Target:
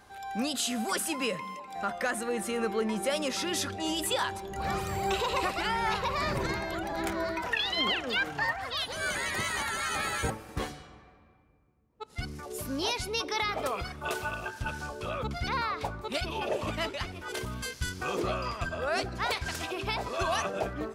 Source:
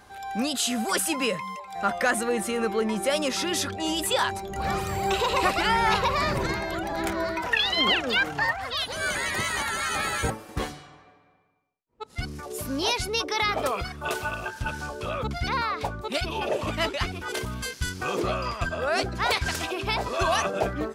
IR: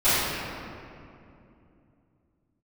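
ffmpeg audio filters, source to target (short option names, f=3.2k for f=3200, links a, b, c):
-filter_complex "[0:a]alimiter=limit=-15dB:level=0:latency=1:release=473,asplit=2[a][b];[1:a]atrim=start_sample=2205[c];[b][c]afir=irnorm=-1:irlink=0,volume=-38.5dB[d];[a][d]amix=inputs=2:normalize=0,volume=-4dB"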